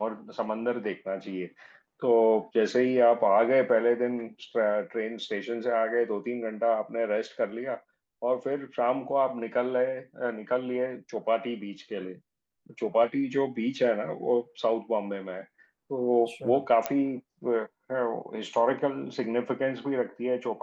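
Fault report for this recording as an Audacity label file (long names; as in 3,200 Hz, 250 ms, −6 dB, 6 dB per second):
16.860000	16.860000	click −12 dBFS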